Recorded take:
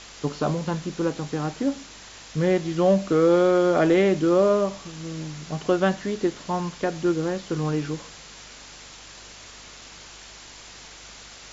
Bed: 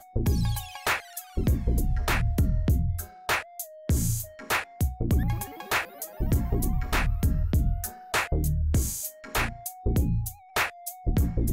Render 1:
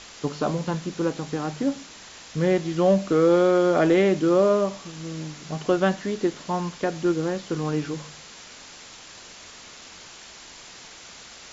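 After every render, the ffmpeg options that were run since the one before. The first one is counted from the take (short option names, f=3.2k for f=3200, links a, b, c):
-af "bandreject=f=50:t=h:w=4,bandreject=f=100:t=h:w=4,bandreject=f=150:t=h:w=4"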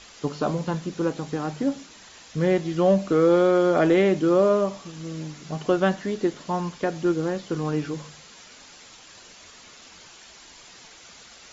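-af "afftdn=nr=6:nf=-45"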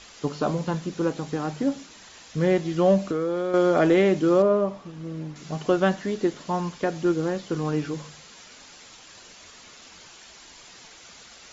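-filter_complex "[0:a]asettb=1/sr,asplit=3[a][b][c];[a]atrim=end=3.074[d];[b]atrim=start=3.07:end=3.54,asetpts=PTS-STARTPTS,afade=t=in:d=0.004:c=qsin,afade=t=out:st=0.466:d=0.004:c=qsin,acompressor=threshold=-22dB:ratio=6:attack=3.2:release=140:knee=1:detection=peak[e];[c]atrim=start=3.536[f];[d][e]acrossfade=d=0.004:c1=hsin:c2=qsin[g];[g][f]acrossfade=d=0.004:c1=qsin:c2=hsin,asettb=1/sr,asplit=3[h][i][j];[h]atrim=end=4.424[k];[i]atrim=start=4.42:end=5.36,asetpts=PTS-STARTPTS,afade=t=in:d=0.004:c=qsin,afade=t=out:st=0.936:d=0.004:c=qsin,lowpass=f=1.4k:p=1[l];[j]atrim=start=5.356[m];[k][l]acrossfade=d=0.004:c1=hsin:c2=qsin[n];[n][m]acrossfade=d=0.004:c1=qsin:c2=hsin"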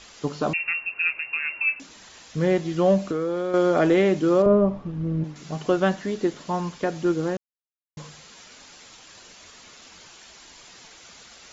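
-filter_complex "[0:a]asettb=1/sr,asplit=3[a][b][c];[a]atrim=end=0.534[d];[b]atrim=start=0.53:end=1.8,asetpts=PTS-STARTPTS,afade=t=in:d=0.004:c=qsin,afade=t=out:st=1.266:d=0.004:c=qsin,lowpass=f=2.5k:t=q:w=0.5098,lowpass=f=2.5k:t=q:w=0.6013,lowpass=f=2.5k:t=q:w=0.9,lowpass=f=2.5k:t=q:w=2.563,afreqshift=-2900[e];[c]atrim=start=1.796[f];[d][e]acrossfade=d=0.004:c1=hsin:c2=qsin[g];[g][f]acrossfade=d=0.004:c1=qsin:c2=hsin,asettb=1/sr,asplit=3[h][i][j];[h]atrim=end=4.464[k];[i]atrim=start=4.46:end=5.24,asetpts=PTS-STARTPTS,afade=t=in:d=0.004:c=qsin,afade=t=out:st=0.776:d=0.004:c=qsin,aemphasis=mode=reproduction:type=riaa[l];[j]atrim=start=5.236[m];[k][l]acrossfade=d=0.004:c1=hsin:c2=qsin[n];[n][m]acrossfade=d=0.004:c1=qsin:c2=hsin,asplit=3[o][p][q];[o]atrim=end=7.37,asetpts=PTS-STARTPTS,afade=t=out:st=7.366:d=0.004:c=hsin[r];[p]atrim=start=7.37:end=7.97,asetpts=PTS-STARTPTS,volume=0[s];[q]atrim=start=7.97,asetpts=PTS-STARTPTS,afade=t=in:d=0.004:c=hsin[t];[r][s][t]concat=n=3:v=0:a=1"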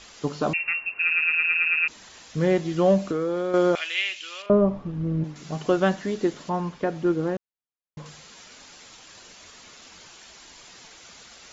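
-filter_complex "[0:a]asettb=1/sr,asplit=3[a][b][c];[a]atrim=end=3.754[d];[b]atrim=start=3.75:end=4.5,asetpts=PTS-STARTPTS,afade=t=in:d=0.004:c=qsin,afade=t=out:st=0.746:d=0.004:c=qsin,highpass=f=2.7k:t=q:w=4.3[e];[c]atrim=start=4.496[f];[d][e]acrossfade=d=0.004:c1=hsin:c2=qsin[g];[g][f]acrossfade=d=0.004:c1=qsin:c2=hsin,asettb=1/sr,asplit=3[h][i][j];[h]atrim=end=6.494[k];[i]atrim=start=6.49:end=8.06,asetpts=PTS-STARTPTS,afade=t=in:d=0.004:c=qsin,afade=t=out:st=1.566:d=0.004:c=qsin,lowpass=f=2.2k:p=1[l];[j]atrim=start=8.056[m];[k][l]acrossfade=d=0.004:c1=hsin:c2=qsin[n];[n][m]acrossfade=d=0.004:c1=qsin:c2=hsin,asplit=9[o][p][q][r][s][t][u][v][w];[o]atrim=end=1.112[x];[p]atrim=start=0.998:end=1.112[y];[q]atrim=start=0.998:end=1.112[z];[r]atrim=start=0.998:end=1.112[aa];[s]atrim=start=0.998:end=1.112[ab];[t]atrim=start=0.998:end=1.112[ac];[u]atrim=start=0.998:end=1.112[ad];[v]atrim=start=0.998:end=1.112[ae];[w]atrim=start=1.878[af];[x][y]acrossfade=d=0.004:c1=hsin:c2=hsin[ag];[ag][z]acrossfade=d=0.004:c1=hsin:c2=hsin[ah];[ah][aa]acrossfade=d=0.004:c1=hsin:c2=hsin[ai];[ai][ab]acrossfade=d=0.004:c1=hsin:c2=hsin[aj];[aj][ac]acrossfade=d=0.004:c1=hsin:c2=hsin[ak];[ak][ad]acrossfade=d=0.004:c1=hsin:c2=hsin[al];[al][ae]acrossfade=d=0.004:c1=hsin:c2=hsin[am];[am][af]acrossfade=d=0.004:c1=hsin:c2=hsin"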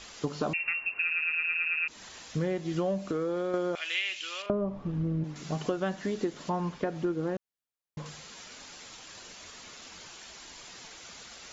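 -af "acompressor=threshold=-27dB:ratio=6"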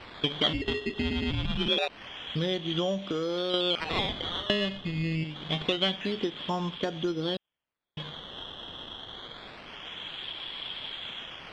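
-af "acrusher=samples=13:mix=1:aa=0.000001:lfo=1:lforange=13:lforate=0.26,lowpass=f=3.3k:t=q:w=15"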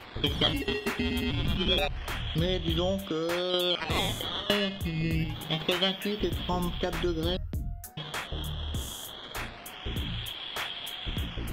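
-filter_complex "[1:a]volume=-10dB[a];[0:a][a]amix=inputs=2:normalize=0"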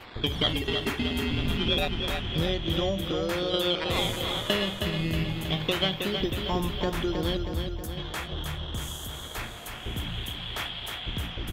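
-af "aecho=1:1:318|636|954|1272|1590|1908|2226:0.501|0.286|0.163|0.0928|0.0529|0.0302|0.0172"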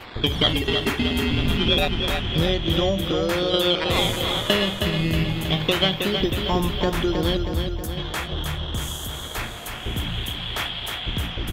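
-af "volume=6dB"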